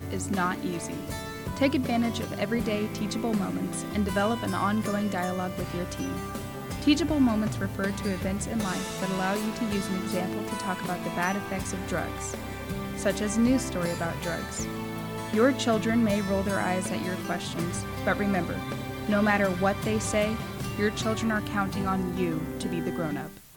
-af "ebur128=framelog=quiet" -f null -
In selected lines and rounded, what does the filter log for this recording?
Integrated loudness:
  I:         -28.4 LUFS
  Threshold: -38.4 LUFS
Loudness range:
  LRA:         2.7 LU
  Threshold: -48.3 LUFS
  LRA low:   -29.7 LUFS
  LRA high:  -27.0 LUFS